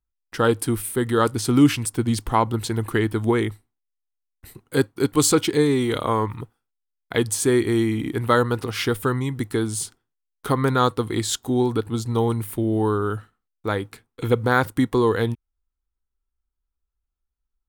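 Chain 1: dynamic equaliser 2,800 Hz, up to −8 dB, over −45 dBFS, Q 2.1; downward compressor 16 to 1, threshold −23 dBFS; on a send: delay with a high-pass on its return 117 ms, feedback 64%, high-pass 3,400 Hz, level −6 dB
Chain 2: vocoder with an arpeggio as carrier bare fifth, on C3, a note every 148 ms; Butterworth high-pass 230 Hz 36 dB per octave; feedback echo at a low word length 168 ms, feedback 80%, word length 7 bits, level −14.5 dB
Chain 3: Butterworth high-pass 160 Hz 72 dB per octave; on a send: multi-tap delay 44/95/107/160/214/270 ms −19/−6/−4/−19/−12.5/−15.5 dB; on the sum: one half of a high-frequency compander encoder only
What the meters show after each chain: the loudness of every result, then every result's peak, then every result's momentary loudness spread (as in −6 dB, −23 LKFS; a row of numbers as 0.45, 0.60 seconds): −29.0, −26.5, −20.5 LKFS; −10.0, −7.5, −2.0 dBFS; 8, 18, 12 LU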